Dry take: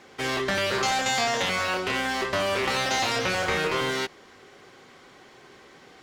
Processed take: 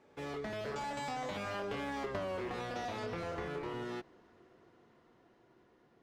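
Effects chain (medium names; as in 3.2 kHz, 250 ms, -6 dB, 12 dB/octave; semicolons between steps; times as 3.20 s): Doppler pass-by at 2.17 s, 29 m/s, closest 5.9 m; tilt shelf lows +7.5 dB, about 1.4 kHz; compression 10:1, threshold -40 dBFS, peak gain reduction 21 dB; trim +4 dB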